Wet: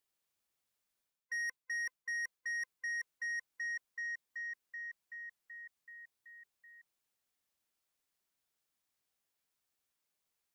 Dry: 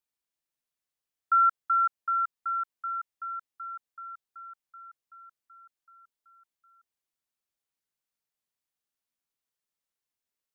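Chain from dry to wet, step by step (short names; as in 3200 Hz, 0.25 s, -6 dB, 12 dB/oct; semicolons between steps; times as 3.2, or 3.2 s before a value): band-swap scrambler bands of 500 Hz; reverse; compressor 6:1, threshold -36 dBFS, peak gain reduction 15 dB; reverse; soft clip -39 dBFS, distortion -12 dB; gain +4 dB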